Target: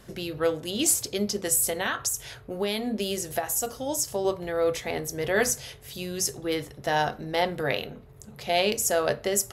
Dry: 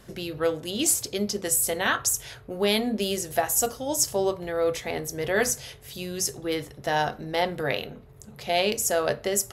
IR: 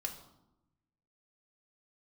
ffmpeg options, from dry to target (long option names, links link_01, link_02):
-filter_complex "[0:a]asettb=1/sr,asplit=3[link_01][link_02][link_03];[link_01]atrim=end=1.674[link_04];[link_02]atrim=start=1.67:end=4.25,asetpts=PTS-STARTPTS,afade=type=in:duration=0.004:curve=qsin,afade=type=out:start_time=2.576:duration=0.004:curve=qsin,acompressor=threshold=-24dB:ratio=6[link_05];[link_03]atrim=start=4.246[link_06];[link_04][link_05]acrossfade=duration=0.004:curve1=hsin:curve2=qsin[link_07];[link_07][link_06]acrossfade=duration=0.004:curve1=qsin:curve2=hsin"